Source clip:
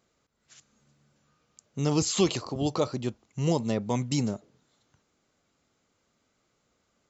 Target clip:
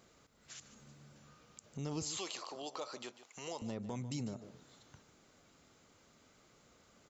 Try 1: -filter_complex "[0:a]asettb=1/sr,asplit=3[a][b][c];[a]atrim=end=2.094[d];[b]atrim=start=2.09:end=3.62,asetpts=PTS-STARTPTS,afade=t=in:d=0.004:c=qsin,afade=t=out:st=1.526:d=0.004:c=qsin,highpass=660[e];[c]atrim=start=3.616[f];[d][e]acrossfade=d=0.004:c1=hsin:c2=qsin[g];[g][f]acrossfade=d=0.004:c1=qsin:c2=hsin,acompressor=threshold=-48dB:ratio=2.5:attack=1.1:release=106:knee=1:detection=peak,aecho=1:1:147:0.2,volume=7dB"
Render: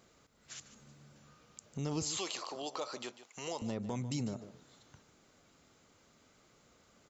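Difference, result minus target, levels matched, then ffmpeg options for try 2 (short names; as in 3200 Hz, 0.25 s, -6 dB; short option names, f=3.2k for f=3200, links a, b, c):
compressor: peak gain reduction -3.5 dB
-filter_complex "[0:a]asettb=1/sr,asplit=3[a][b][c];[a]atrim=end=2.094[d];[b]atrim=start=2.09:end=3.62,asetpts=PTS-STARTPTS,afade=t=in:d=0.004:c=qsin,afade=t=out:st=1.526:d=0.004:c=qsin,highpass=660[e];[c]atrim=start=3.616[f];[d][e]acrossfade=d=0.004:c1=hsin:c2=qsin[g];[g][f]acrossfade=d=0.004:c1=qsin:c2=hsin,acompressor=threshold=-54dB:ratio=2.5:attack=1.1:release=106:knee=1:detection=peak,aecho=1:1:147:0.2,volume=7dB"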